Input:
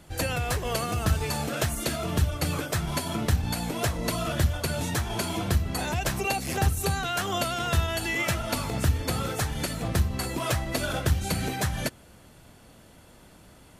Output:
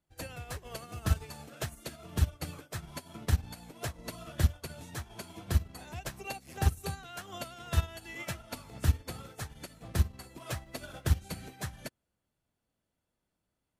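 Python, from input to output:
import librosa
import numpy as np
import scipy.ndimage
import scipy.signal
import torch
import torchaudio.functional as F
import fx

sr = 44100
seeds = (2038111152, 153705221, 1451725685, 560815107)

y = fx.dmg_crackle(x, sr, seeds[0], per_s=220.0, level_db=-43.0, at=(10.55, 11.13), fade=0.02)
y = fx.upward_expand(y, sr, threshold_db=-39.0, expansion=2.5)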